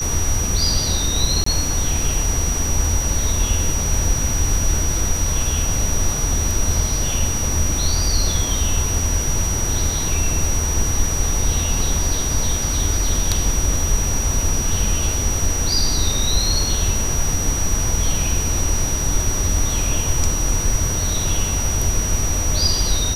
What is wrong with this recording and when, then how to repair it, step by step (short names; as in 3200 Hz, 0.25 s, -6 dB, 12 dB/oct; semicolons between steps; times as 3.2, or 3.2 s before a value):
tone 5800 Hz -23 dBFS
1.44–1.46 gap 24 ms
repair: notch 5800 Hz, Q 30; interpolate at 1.44, 24 ms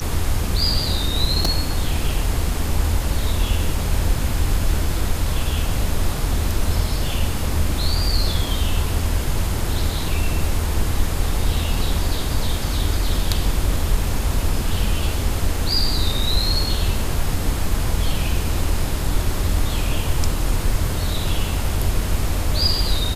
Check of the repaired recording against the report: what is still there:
none